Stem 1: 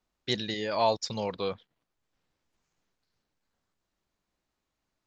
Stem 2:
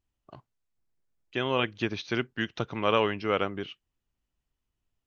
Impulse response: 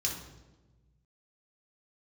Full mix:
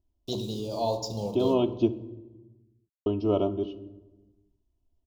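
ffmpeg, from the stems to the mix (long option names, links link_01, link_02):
-filter_complex "[0:a]aeval=exprs='val(0)*gte(abs(val(0)),0.0106)':channel_layout=same,volume=-3.5dB,asplit=2[link_01][link_02];[link_02]volume=-4dB[link_03];[1:a]lowpass=frequency=2200:poles=1,aecho=1:1:3.1:0.81,volume=3dB,asplit=3[link_04][link_05][link_06];[link_04]atrim=end=1.9,asetpts=PTS-STARTPTS,afade=type=out:start_time=1.896:duration=0.004:curve=hsin[link_07];[link_05]atrim=start=1.9:end=3.06,asetpts=PTS-STARTPTS,volume=0[link_08];[link_06]atrim=start=3.06,asetpts=PTS-STARTPTS,afade=type=in:duration=0.004:curve=hsin[link_09];[link_07][link_08][link_09]concat=n=3:v=0:a=1,asplit=2[link_10][link_11];[link_11]volume=-13dB[link_12];[2:a]atrim=start_sample=2205[link_13];[link_03][link_12]amix=inputs=2:normalize=0[link_14];[link_14][link_13]afir=irnorm=-1:irlink=0[link_15];[link_01][link_10][link_15]amix=inputs=3:normalize=0,asuperstop=centerf=1800:order=4:qfactor=0.58,highshelf=frequency=3500:gain=-7"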